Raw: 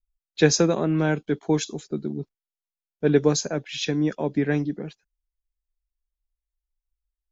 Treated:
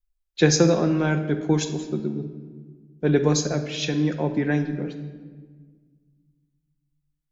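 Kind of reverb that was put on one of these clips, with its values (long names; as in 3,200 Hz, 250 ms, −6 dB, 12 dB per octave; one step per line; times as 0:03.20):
rectangular room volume 1,700 cubic metres, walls mixed, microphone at 0.89 metres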